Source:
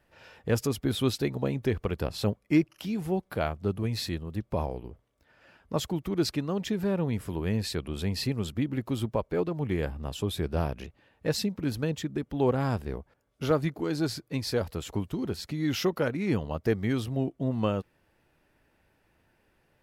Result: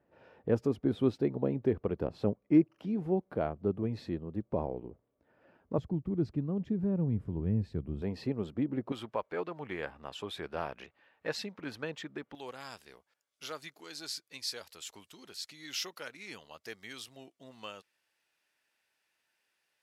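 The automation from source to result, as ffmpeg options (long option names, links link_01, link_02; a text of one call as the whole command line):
ffmpeg -i in.wav -af "asetnsamples=nb_out_samples=441:pad=0,asendcmd='5.78 bandpass f 130;8.02 bandpass f 460;8.92 bandpass f 1500;12.35 bandpass f 6000',bandpass=frequency=350:width_type=q:width=0.69:csg=0" out.wav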